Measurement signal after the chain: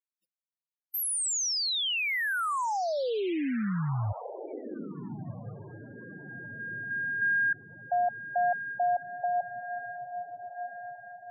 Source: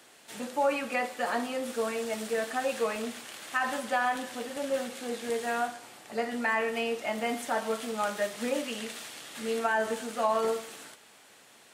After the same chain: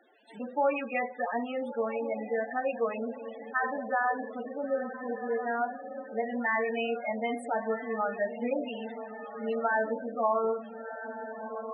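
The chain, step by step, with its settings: echo that smears into a reverb 1397 ms, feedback 45%, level -9 dB; loudest bins only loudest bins 16

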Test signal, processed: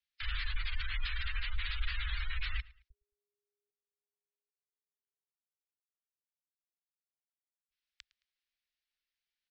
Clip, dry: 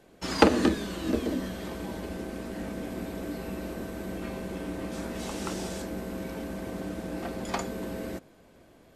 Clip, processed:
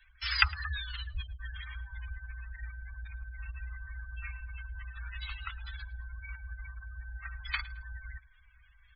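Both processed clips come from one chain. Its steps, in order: low-pass 4.7 kHz 24 dB/octave; spectral gate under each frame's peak -20 dB strong; inverse Chebyshev band-stop 190–540 Hz, stop band 70 dB; on a send: feedback delay 109 ms, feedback 32%, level -22 dB; on the sum: trim +8 dB

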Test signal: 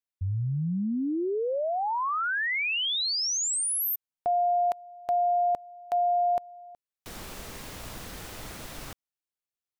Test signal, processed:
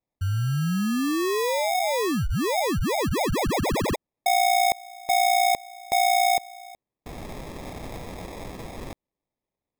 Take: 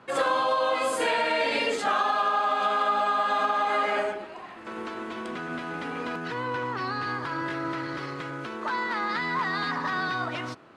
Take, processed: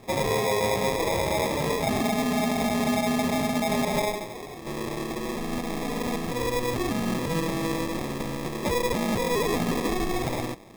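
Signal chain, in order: peak limiter -21 dBFS; sample-and-hold 30×; trim +4 dB

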